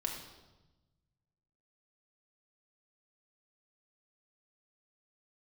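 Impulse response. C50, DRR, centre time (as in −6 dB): 5.0 dB, 0.0 dB, 33 ms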